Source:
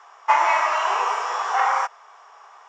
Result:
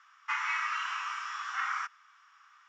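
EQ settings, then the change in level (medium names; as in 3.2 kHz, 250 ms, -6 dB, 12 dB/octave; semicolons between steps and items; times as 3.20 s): Chebyshev high-pass 1.3 kHz, order 4; distance through air 70 m; -6.0 dB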